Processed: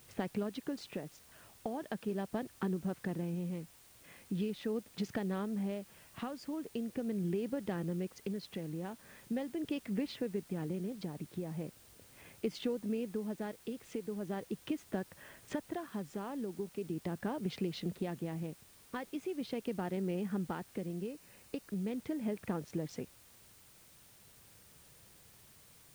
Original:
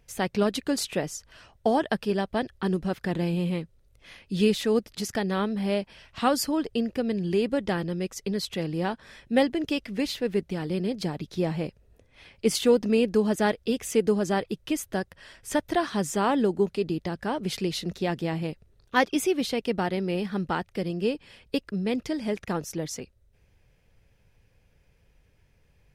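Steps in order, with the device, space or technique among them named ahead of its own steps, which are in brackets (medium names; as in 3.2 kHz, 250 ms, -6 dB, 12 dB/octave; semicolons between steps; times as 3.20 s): local Wiener filter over 9 samples; medium wave at night (band-pass 120–4200 Hz; compression, threshold -34 dBFS, peak gain reduction 17.5 dB; tremolo 0.4 Hz, depth 45%; whistle 9 kHz -66 dBFS; white noise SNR 18 dB); bass shelf 360 Hz +11 dB; 21.07–21.69 s: band-stop 3.3 kHz, Q 11; bass shelf 350 Hz -4 dB; trim -3 dB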